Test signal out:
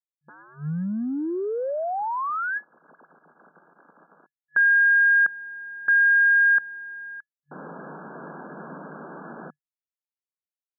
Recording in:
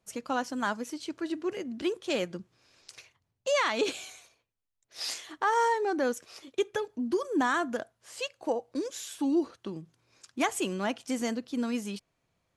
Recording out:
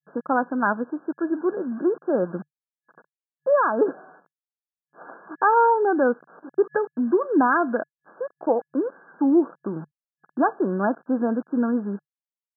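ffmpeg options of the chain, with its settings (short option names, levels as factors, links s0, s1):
-af "acrusher=bits=7:mix=0:aa=0.000001,afftfilt=real='re*between(b*sr/4096,140,1700)':imag='im*between(b*sr/4096,140,1700)':win_size=4096:overlap=0.75,volume=2.66"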